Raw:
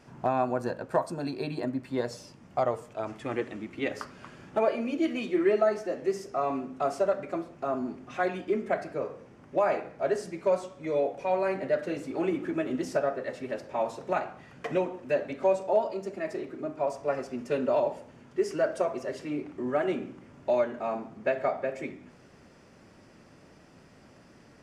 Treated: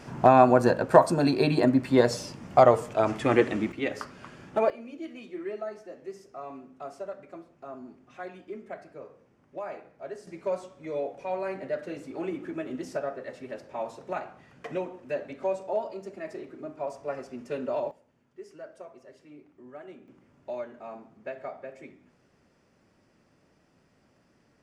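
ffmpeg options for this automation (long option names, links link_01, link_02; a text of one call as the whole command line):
ffmpeg -i in.wav -af "asetnsamples=nb_out_samples=441:pad=0,asendcmd='3.72 volume volume 1dB;4.7 volume volume -11.5dB;10.27 volume volume -4.5dB;17.91 volume volume -17dB;20.08 volume volume -10dB',volume=10dB" out.wav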